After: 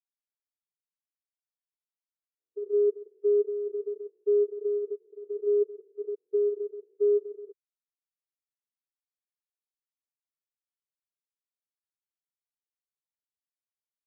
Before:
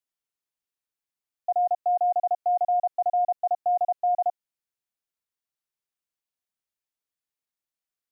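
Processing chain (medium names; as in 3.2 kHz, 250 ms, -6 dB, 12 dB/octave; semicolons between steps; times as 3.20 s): spectrogram pixelated in time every 100 ms; bass shelf 450 Hz -9.5 dB; speed mistake 78 rpm record played at 45 rpm; upward expansion 2.5:1, over -39 dBFS; trim +3.5 dB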